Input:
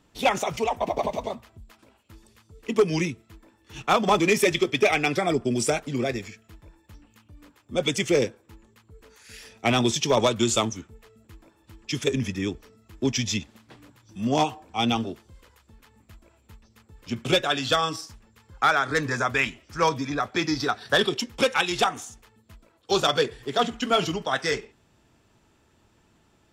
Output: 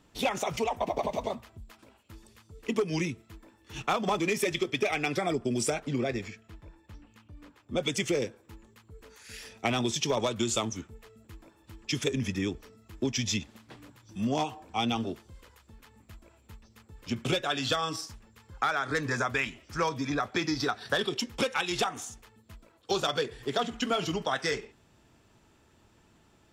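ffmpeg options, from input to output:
-filter_complex "[0:a]asettb=1/sr,asplit=3[s0][s1][s2];[s0]atrim=end=5.744[s3];[s1]atrim=start=5.74:end=7.79,asetpts=PTS-STARTPTS,afade=t=in:d=0.004:c=qsin,afade=t=out:st=2.046:d=0.004:c=qsin,highshelf=f=7400:g=-11.5[s4];[s2]atrim=start=7.786[s5];[s3][s4]acrossfade=d=0.004:c1=hsin:c2=qsin[s6];[s6][s5]acrossfade=d=0.004:c1=qsin:c2=hsin,acompressor=threshold=0.0501:ratio=4"

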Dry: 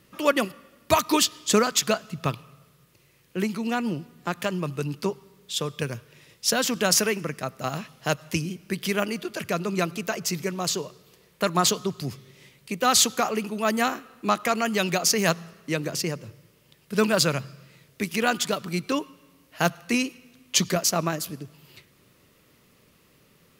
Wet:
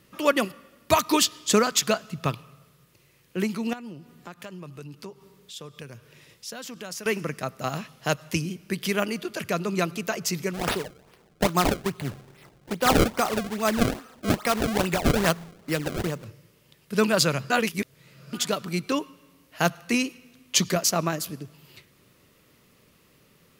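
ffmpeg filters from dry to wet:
-filter_complex "[0:a]asettb=1/sr,asplit=3[s0][s1][s2];[s0]atrim=end=3.734[s3];[s1]atrim=start=3.73:end=7.06,asetpts=PTS-STARTPTS,afade=t=in:d=0.004:c=qsin,afade=t=out:st=3.326:d=0.004:c=qsin,acompressor=threshold=0.00501:ratio=2:attack=3.2:release=140:knee=1:detection=peak[s4];[s2]atrim=start=7.056[s5];[s3][s4]acrossfade=d=0.004:c1=hsin:c2=qsin[s6];[s6][s5]acrossfade=d=0.004:c1=qsin:c2=hsin,asplit=3[s7][s8][s9];[s7]afade=t=out:st=10.53:d=0.02[s10];[s8]acrusher=samples=28:mix=1:aa=0.000001:lfo=1:lforange=44.8:lforate=2.4,afade=t=in:st=10.53:d=0.02,afade=t=out:st=16.24:d=0.02[s11];[s9]afade=t=in:st=16.24:d=0.02[s12];[s10][s11][s12]amix=inputs=3:normalize=0,asplit=3[s13][s14][s15];[s13]atrim=end=17.502[s16];[s14]atrim=start=17.498:end=18.332,asetpts=PTS-STARTPTS,areverse[s17];[s15]atrim=start=18.328[s18];[s16][s17]acrossfade=d=0.004:c1=hsin:c2=hsin[s19];[s19][s18]acrossfade=d=0.004:c1=hsin:c2=hsin"

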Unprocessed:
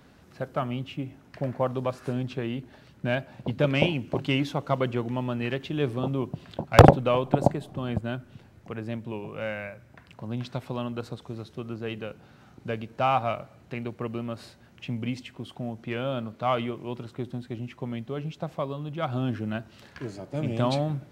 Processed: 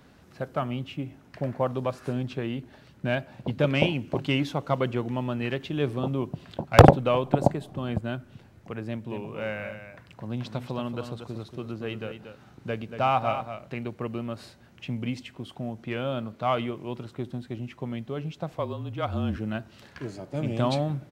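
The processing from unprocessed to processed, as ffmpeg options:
-filter_complex "[0:a]asplit=3[s0][s1][s2];[s0]afade=t=out:st=9.09:d=0.02[s3];[s1]aecho=1:1:233:0.355,afade=t=in:st=9.09:d=0.02,afade=t=out:st=13.75:d=0.02[s4];[s2]afade=t=in:st=13.75:d=0.02[s5];[s3][s4][s5]amix=inputs=3:normalize=0,asettb=1/sr,asplit=3[s6][s7][s8];[s6]atrim=end=18.524[s9];[s7]atrim=start=18.52:end=19.37,asetpts=PTS-STARTPTS,afade=t=in:d=0.004:c=qsin,afade=t=out:st=0.846:d=0.004:c=qsin,afreqshift=-30[s10];[s8]atrim=start=19.366[s11];[s9][s10]acrossfade=d=0.004:c1=hsin:c2=qsin[s12];[s12][s11]acrossfade=d=0.004:c1=qsin:c2=hsin"

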